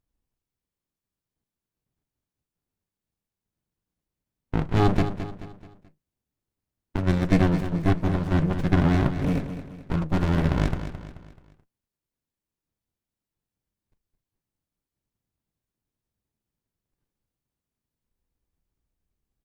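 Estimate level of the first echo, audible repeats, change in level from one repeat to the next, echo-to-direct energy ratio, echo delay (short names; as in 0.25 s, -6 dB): -10.5 dB, 4, -7.5 dB, -9.5 dB, 0.216 s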